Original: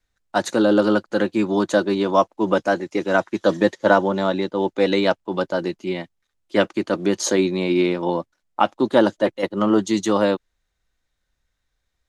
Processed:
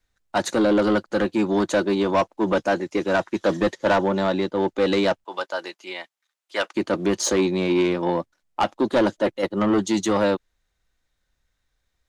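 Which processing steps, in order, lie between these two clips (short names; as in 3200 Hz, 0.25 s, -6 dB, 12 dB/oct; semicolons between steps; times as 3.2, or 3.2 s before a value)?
5.24–6.75 HPF 800 Hz 12 dB/oct; soft clip -14.5 dBFS, distortion -12 dB; gain +1 dB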